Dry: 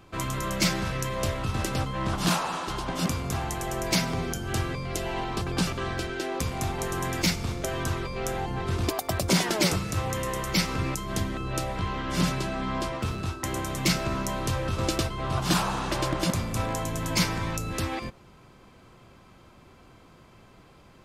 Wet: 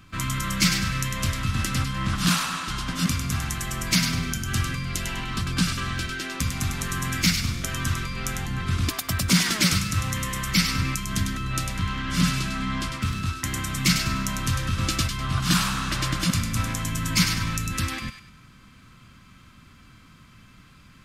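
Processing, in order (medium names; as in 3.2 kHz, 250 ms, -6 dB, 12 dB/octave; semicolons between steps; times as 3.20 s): high-order bell 560 Hz -14.5 dB; on a send: feedback echo behind a high-pass 100 ms, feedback 33%, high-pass 1.5 kHz, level -5.5 dB; on the sum: trim +4 dB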